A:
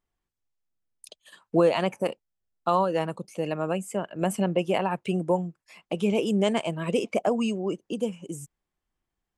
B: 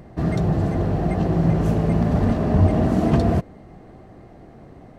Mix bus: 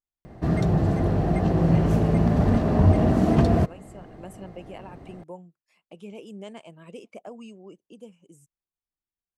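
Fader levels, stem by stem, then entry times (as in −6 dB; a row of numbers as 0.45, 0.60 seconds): −16.5, −1.0 decibels; 0.00, 0.25 seconds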